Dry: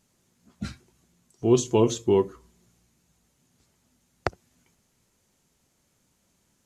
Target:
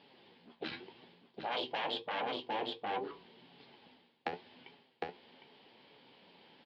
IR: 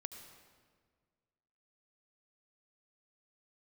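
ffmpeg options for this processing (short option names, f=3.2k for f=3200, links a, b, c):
-af "equalizer=f=660:t=o:w=0.77:g=-3,aresample=11025,asoftclip=type=tanh:threshold=-19dB,aresample=44100,aeval=exprs='0.133*(cos(1*acos(clip(val(0)/0.133,-1,1)))-cos(1*PI/2))+0.0531*(cos(4*acos(clip(val(0)/0.133,-1,1)))-cos(4*PI/2))':c=same,flanger=delay=7:depth=5.9:regen=56:speed=0.84:shape=sinusoidal,aecho=1:1:757:0.473,afftfilt=real='re*lt(hypot(re,im),0.112)':imag='im*lt(hypot(re,im),0.112)':win_size=1024:overlap=0.75,areverse,acompressor=threshold=-53dB:ratio=5,areverse,highpass=310,equalizer=f=450:t=q:w=4:g=4,equalizer=f=830:t=q:w=4:g=7,equalizer=f=1.3k:t=q:w=4:g=-8,equalizer=f=3.1k:t=q:w=4:g=6,lowpass=f=4.1k:w=0.5412,lowpass=f=4.1k:w=1.3066,volume=16dB"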